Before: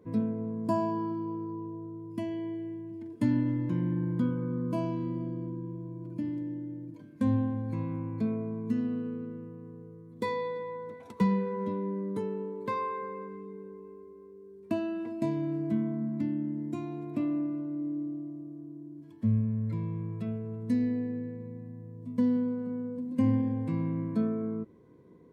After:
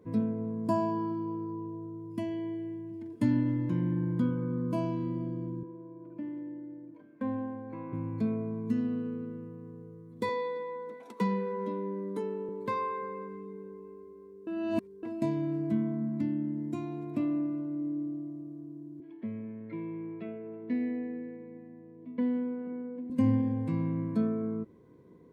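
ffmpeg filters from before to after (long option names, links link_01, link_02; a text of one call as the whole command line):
ffmpeg -i in.wav -filter_complex "[0:a]asettb=1/sr,asplit=3[link_01][link_02][link_03];[link_01]atrim=end=5.634[link_04];[link_02]atrim=start=5.63:end=7.93,asetpts=PTS-STARTPTS,afade=type=in:duration=0.004:curve=qsin,afade=type=out:start_time=2.296:duration=0.004:curve=qsin,acrossover=split=280 2500:gain=0.141 1 0.0708[link_05][link_06][link_07];[link_05][link_06][link_07]amix=inputs=3:normalize=0[link_08];[link_03]atrim=start=7.926[link_09];[link_04][link_08]acrossfade=duration=0.004:curve1=hsin:curve2=qsin[link_10];[link_10][link_09]acrossfade=duration=0.004:curve1=qsin:curve2=hsin,asettb=1/sr,asplit=3[link_11][link_12][link_13];[link_11]atrim=end=10.294[link_14];[link_12]atrim=start=10.29:end=12.49,asetpts=PTS-STARTPTS,afade=type=in:duration=0.004:curve=qsin,afade=type=out:start_time=2.196:duration=0.004:curve=qsin,highpass=frequency=210:width=0.5412,highpass=frequency=210:width=1.3066[link_15];[link_13]atrim=start=12.486[link_16];[link_14][link_15]acrossfade=duration=0.004:curve1=hsin:curve2=qsin[link_17];[link_17][link_16]acrossfade=duration=0.004:curve1=qsin:curve2=hsin,asettb=1/sr,asplit=3[link_18][link_19][link_20];[link_18]atrim=end=19.004[link_21];[link_19]atrim=start=19:end=23.1,asetpts=PTS-STARTPTS,afade=type=in:duration=0.004:curve=qsin,afade=type=out:start_time=4.096:duration=0.004:curve=qsin,highpass=frequency=200:width=0.5412,highpass=frequency=200:width=1.3066,equalizer=frequency=220:width_type=q:width=4:gain=-7,equalizer=frequency=350:width_type=q:width=4:gain=8,equalizer=frequency=500:width_type=q:width=4:gain=-3,equalizer=frequency=740:width_type=q:width=4:gain=4,equalizer=frequency=1100:width_type=q:width=4:gain=-5,equalizer=frequency=2200:width_type=q:width=4:gain=6,lowpass=frequency=3200:width=0.5412,lowpass=frequency=3200:width=1.3066[link_22];[link_20]atrim=start=23.096[link_23];[link_21][link_22]acrossfade=duration=0.004:curve1=hsin:curve2=qsin[link_24];[link_24][link_23]acrossfade=duration=0.004:curve1=qsin:curve2=hsin,asplit=3[link_25][link_26][link_27];[link_25]atrim=end=14.472[link_28];[link_26]atrim=start=14.468:end=15.032,asetpts=PTS-STARTPTS,areverse[link_29];[link_27]atrim=start=15.028[link_30];[link_28][link_29]acrossfade=duration=0.004:curve1=hsin:curve2=hsin[link_31];[link_31][link_30]acrossfade=duration=0.004:curve1=hsin:curve2=hsin" out.wav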